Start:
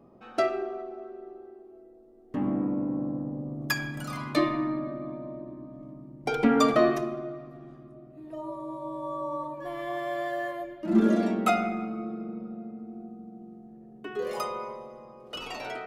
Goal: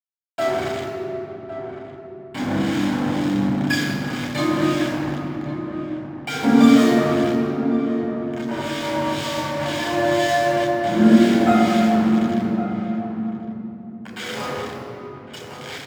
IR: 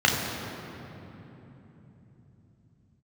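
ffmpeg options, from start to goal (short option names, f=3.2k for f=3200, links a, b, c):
-filter_complex "[0:a]asettb=1/sr,asplit=3[a][b][c];[a]atrim=end=8.514[d];[b]atrim=start=8.51:end=10.64,asetpts=PTS-STARTPTS,afade=t=in:d=0.004:c=qsin,afade=t=out:st=2.126:d=0.004:c=qsin,acontrast=34[e];[c]atrim=start=10.636[f];[d][e]acrossfade=d=0.004:c1=hsin:c2=qsin[g];[g][f]acrossfade=d=0.004:c1=qsin:c2=hsin,acrusher=bits=4:mix=0:aa=0.000001,acrossover=split=1500[h][i];[h]aeval=exprs='val(0)*(1-0.7/2+0.7/2*cos(2*PI*2*n/s))':c=same[j];[i]aeval=exprs='val(0)*(1-0.7/2-0.7/2*cos(2*PI*2*n/s))':c=same[k];[j][k]amix=inputs=2:normalize=0,asplit=2[l][m];[m]adelay=1108,volume=-10dB,highshelf=f=4k:g=-24.9[n];[l][n]amix=inputs=2:normalize=0[o];[1:a]atrim=start_sample=2205,asetrate=48510,aresample=44100[p];[o][p]afir=irnorm=-1:irlink=0,volume=-9dB"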